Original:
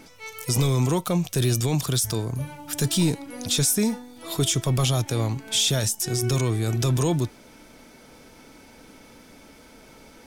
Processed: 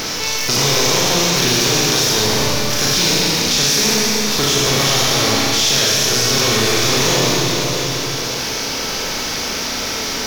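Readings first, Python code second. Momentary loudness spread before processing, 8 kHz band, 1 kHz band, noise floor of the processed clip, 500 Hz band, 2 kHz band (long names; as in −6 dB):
10 LU, +12.0 dB, +14.0 dB, −22 dBFS, +10.0 dB, +18.5 dB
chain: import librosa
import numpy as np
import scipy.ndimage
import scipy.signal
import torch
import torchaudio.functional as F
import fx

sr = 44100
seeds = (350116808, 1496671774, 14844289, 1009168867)

y = fx.spec_flatten(x, sr, power=0.38)
y = fx.peak_eq(y, sr, hz=440.0, db=5.0, octaves=0.29)
y = np.clip(10.0 ** (19.0 / 20.0) * y, -1.0, 1.0) / 10.0 ** (19.0 / 20.0)
y = fx.high_shelf_res(y, sr, hz=7000.0, db=-7.5, q=3.0)
y = y + 10.0 ** (-22.0 / 20.0) * np.pad(y, (int(681 * sr / 1000.0), 0))[:len(y)]
y = fx.rev_schroeder(y, sr, rt60_s=1.9, comb_ms=29, drr_db=-5.0)
y = fx.env_flatten(y, sr, amount_pct=70)
y = F.gain(torch.from_numpy(y), 1.5).numpy()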